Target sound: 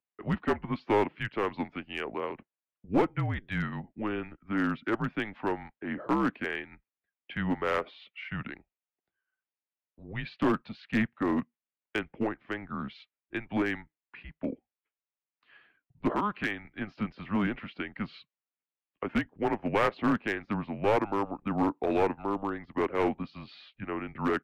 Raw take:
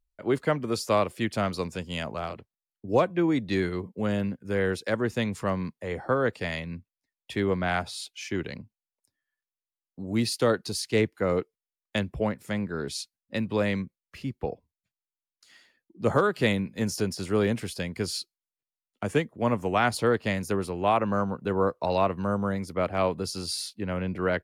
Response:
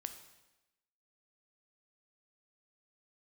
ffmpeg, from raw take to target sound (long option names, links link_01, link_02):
-filter_complex "[0:a]asettb=1/sr,asplit=3[link_01][link_02][link_03];[link_01]atrim=end=16.114[link_04];[link_02]atrim=start=16.11:end=16.65,asetpts=PTS-STARTPTS,afade=type=in:duration=0.004:curve=qsin,afade=type=out:start_time=0.536:duration=0.004:curve=qsin,acrossover=split=900|2200[link_05][link_06][link_07];[link_05]acompressor=threshold=-30dB:ratio=4[link_08];[link_06]acompressor=threshold=-28dB:ratio=4[link_09];[link_07]acompressor=threshold=-34dB:ratio=4[link_10];[link_08][link_09][link_10]amix=inputs=3:normalize=0[link_11];[link_03]atrim=start=16.646[link_12];[link_04][link_11]acrossfade=duration=0.004:curve1=hsin:curve2=qsin[link_13];[link_13][link_12]acrossfade=duration=0.004:curve1=qsin:curve2=hsin,highpass=frequency=390:width_type=q:width=0.5412,highpass=frequency=390:width_type=q:width=1.307,lowpass=frequency=3100:width_type=q:width=0.5176,lowpass=frequency=3100:width_type=q:width=0.7071,lowpass=frequency=3100:width_type=q:width=1.932,afreqshift=-210,aeval=exprs='clip(val(0),-1,0.0668)':channel_layout=same"